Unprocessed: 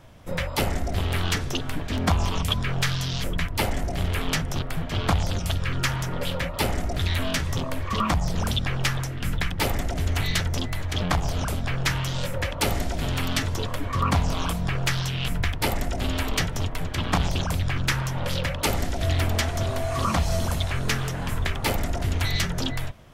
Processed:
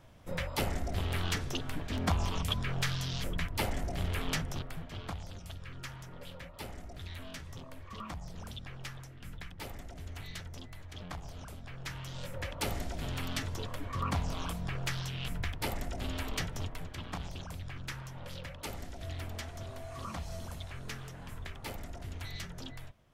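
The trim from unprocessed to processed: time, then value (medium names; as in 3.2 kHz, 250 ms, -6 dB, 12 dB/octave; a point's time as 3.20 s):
4.41 s -8 dB
5.18 s -19 dB
11.69 s -19 dB
12.51 s -10.5 dB
16.65 s -10.5 dB
17.14 s -17 dB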